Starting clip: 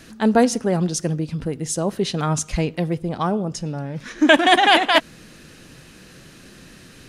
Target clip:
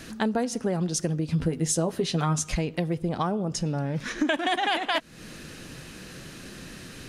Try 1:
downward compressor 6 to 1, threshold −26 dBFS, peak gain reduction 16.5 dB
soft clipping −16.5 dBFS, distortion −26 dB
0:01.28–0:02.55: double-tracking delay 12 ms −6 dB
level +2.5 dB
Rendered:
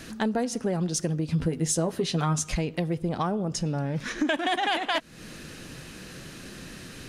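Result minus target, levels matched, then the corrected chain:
soft clipping: distortion +21 dB
downward compressor 6 to 1, threshold −26 dBFS, peak gain reduction 16.5 dB
soft clipping −5.5 dBFS, distortion −46 dB
0:01.28–0:02.55: double-tracking delay 12 ms −6 dB
level +2.5 dB

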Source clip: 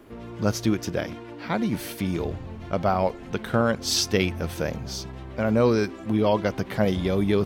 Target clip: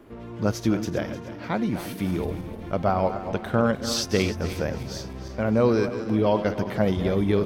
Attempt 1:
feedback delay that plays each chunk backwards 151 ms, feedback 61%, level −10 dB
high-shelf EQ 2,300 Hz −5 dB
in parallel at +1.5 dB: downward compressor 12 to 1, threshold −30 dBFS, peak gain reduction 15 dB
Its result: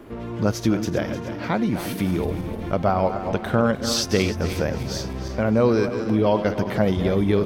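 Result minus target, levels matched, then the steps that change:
downward compressor: peak gain reduction +15 dB
remove: downward compressor 12 to 1, threshold −30 dBFS, peak gain reduction 15 dB

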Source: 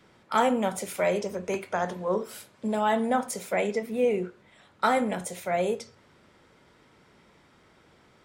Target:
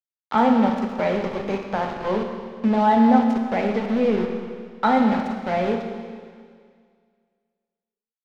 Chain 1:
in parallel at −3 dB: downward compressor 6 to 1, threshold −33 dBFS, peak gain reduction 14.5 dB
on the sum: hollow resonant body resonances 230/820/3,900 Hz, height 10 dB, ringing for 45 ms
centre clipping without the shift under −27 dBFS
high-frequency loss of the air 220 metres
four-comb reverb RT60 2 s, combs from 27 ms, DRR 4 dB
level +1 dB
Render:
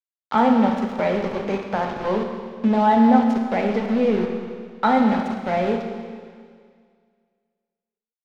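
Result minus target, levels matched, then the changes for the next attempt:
downward compressor: peak gain reduction −5.5 dB
change: downward compressor 6 to 1, threshold −39.5 dBFS, peak gain reduction 19.5 dB

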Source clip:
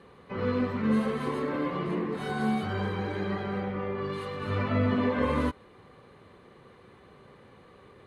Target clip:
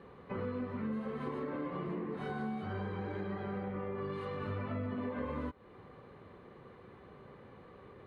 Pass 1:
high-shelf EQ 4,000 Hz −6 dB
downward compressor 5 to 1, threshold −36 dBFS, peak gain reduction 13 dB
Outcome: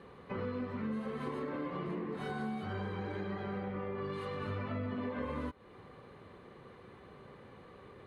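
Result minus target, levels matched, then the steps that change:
4,000 Hz band +4.0 dB
change: high-shelf EQ 4,000 Hz −16.5 dB

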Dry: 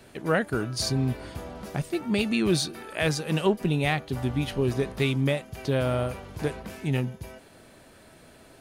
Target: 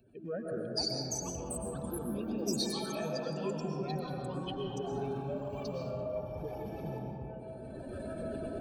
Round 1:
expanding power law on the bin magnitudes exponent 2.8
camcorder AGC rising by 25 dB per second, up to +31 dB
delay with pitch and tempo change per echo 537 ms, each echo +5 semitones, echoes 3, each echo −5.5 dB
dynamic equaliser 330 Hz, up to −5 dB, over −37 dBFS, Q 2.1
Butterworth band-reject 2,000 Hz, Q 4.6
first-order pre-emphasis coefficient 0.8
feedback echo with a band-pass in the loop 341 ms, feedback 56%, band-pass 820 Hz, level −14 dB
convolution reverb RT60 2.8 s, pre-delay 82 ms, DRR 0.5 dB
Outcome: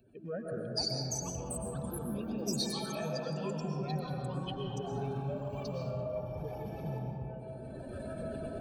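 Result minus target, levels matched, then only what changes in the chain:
125 Hz band +3.5 dB
change: dynamic equaliser 130 Hz, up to −5 dB, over −37 dBFS, Q 2.1

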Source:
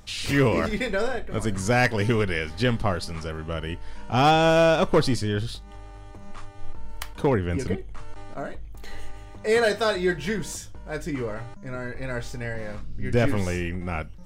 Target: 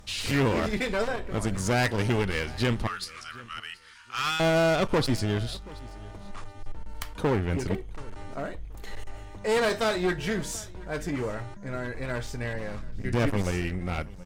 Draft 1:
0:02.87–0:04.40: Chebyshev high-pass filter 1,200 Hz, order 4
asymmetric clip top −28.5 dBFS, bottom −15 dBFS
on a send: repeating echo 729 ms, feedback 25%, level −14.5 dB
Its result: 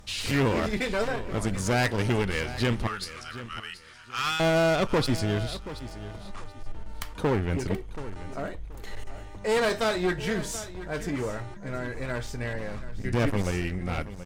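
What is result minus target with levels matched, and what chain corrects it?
echo-to-direct +7.5 dB
0:02.87–0:04.40: Chebyshev high-pass filter 1,200 Hz, order 4
asymmetric clip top −28.5 dBFS, bottom −15 dBFS
on a send: repeating echo 729 ms, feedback 25%, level −22 dB

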